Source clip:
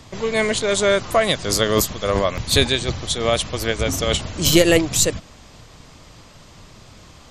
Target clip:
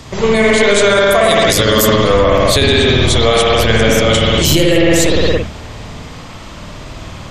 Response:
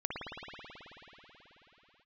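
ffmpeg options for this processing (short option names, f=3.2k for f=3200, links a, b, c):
-filter_complex "[0:a]asettb=1/sr,asplit=3[a][b][c];[a]atrim=end=0.814[d];[b]atrim=start=0.81:end=1.95,asetpts=PTS-STARTPTS,afade=t=in:d=0.004:c=qsin,afade=t=out:st=1.136:d=0.004:c=qsin,highshelf=f=8.2k:g=11[e];[c]atrim=start=1.946[f];[d][e]acrossfade=d=0.004:c1=hsin:c2=qsin[g];[g][f]acrossfade=d=0.004:c1=qsin:c2=hsin[h];[1:a]atrim=start_sample=2205,afade=t=out:st=0.37:d=0.01,atrim=end_sample=16758[i];[h][i]afir=irnorm=-1:irlink=0,alimiter=level_in=12dB:limit=-1dB:release=50:level=0:latency=1,volume=-1dB"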